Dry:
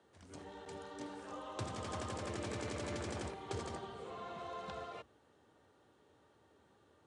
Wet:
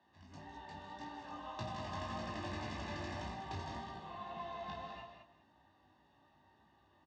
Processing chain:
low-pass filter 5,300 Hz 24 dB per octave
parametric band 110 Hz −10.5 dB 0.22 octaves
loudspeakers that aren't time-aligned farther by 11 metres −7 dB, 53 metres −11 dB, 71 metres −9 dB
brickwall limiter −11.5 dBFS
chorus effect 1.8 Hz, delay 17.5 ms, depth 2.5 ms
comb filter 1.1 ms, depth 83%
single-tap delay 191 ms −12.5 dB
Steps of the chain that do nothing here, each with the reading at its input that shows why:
brickwall limiter −11.5 dBFS: peak of its input −27.0 dBFS

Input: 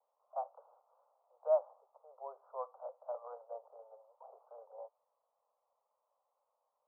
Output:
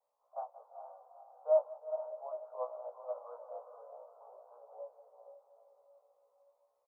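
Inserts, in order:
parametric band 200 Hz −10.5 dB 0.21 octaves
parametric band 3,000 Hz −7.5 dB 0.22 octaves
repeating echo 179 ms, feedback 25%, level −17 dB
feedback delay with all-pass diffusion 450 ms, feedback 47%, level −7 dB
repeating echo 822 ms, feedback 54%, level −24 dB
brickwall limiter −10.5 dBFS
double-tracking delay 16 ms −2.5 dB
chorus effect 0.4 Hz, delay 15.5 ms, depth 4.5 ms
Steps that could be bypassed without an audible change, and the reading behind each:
parametric band 200 Hz: nothing at its input below 400 Hz
parametric band 3,000 Hz: nothing at its input above 1,300 Hz
brickwall limiter −10.5 dBFS: peak of its input −20.5 dBFS

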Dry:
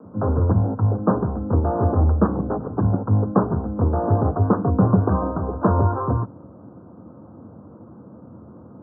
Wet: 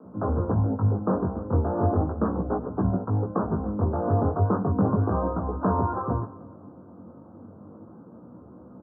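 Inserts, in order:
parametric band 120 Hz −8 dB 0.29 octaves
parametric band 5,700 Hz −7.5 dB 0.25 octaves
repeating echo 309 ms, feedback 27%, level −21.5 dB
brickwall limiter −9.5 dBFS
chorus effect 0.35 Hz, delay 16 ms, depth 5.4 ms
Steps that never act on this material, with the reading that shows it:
parametric band 5,700 Hz: nothing at its input above 1,400 Hz

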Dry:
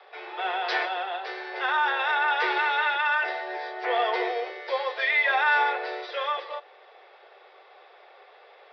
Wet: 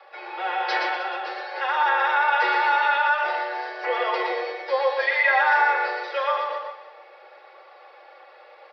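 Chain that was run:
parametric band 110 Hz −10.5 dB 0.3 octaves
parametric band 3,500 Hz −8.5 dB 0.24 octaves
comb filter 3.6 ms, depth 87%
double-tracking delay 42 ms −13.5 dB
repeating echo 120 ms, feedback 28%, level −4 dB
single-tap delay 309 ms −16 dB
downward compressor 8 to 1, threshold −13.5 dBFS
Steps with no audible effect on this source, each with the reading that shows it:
parametric band 110 Hz: nothing at its input below 340 Hz

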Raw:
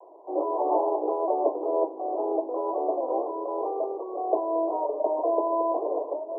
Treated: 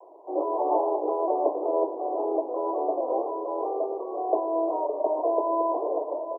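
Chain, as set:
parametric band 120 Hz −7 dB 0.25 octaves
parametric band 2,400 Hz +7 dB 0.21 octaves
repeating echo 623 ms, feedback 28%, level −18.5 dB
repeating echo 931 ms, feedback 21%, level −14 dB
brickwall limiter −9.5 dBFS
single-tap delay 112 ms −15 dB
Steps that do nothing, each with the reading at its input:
parametric band 120 Hz: nothing at its input below 250 Hz
parametric band 2,400 Hz: nothing at its input above 1,100 Hz
brickwall limiter −9.5 dBFS: peak of its input −11.5 dBFS

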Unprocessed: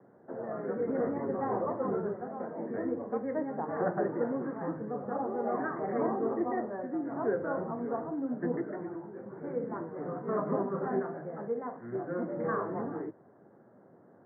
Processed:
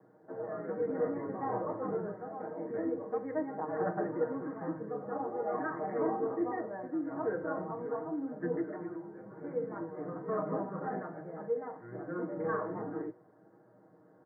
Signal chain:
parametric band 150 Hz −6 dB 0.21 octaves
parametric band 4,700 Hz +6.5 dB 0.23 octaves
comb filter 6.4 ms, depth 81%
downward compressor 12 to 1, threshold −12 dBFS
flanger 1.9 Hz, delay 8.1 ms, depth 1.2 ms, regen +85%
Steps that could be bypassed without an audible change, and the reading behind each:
parametric band 4,700 Hz: nothing at its input above 1,900 Hz
downward compressor, threshold −12 dBFS: peak of its input −16.5 dBFS

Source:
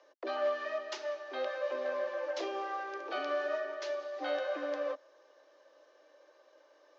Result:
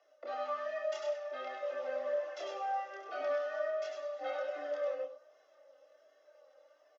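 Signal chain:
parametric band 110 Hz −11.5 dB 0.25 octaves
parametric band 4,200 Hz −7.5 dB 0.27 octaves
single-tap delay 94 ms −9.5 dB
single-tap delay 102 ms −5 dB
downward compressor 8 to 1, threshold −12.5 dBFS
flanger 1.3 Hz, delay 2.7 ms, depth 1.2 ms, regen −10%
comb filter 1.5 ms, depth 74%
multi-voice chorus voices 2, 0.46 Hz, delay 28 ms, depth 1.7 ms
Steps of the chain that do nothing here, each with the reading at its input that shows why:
parametric band 110 Hz: nothing at its input below 250 Hz
downward compressor, threshold −12.5 dBFS: peak of its input −22.0 dBFS

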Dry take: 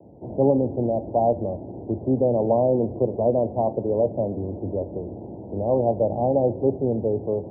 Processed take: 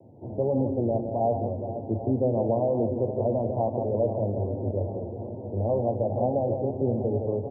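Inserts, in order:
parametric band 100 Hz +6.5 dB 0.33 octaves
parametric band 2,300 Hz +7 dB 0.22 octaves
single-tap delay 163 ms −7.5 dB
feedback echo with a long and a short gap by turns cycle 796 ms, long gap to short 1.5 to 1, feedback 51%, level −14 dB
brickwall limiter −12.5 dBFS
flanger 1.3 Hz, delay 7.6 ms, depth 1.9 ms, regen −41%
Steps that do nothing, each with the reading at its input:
parametric band 2,300 Hz: nothing at its input above 1,000 Hz

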